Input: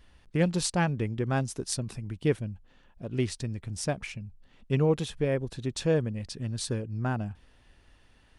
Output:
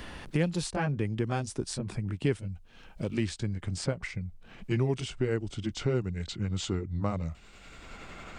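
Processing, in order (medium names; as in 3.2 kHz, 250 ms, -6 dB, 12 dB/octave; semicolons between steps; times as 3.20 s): pitch bend over the whole clip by -4.5 st starting unshifted; three bands compressed up and down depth 70%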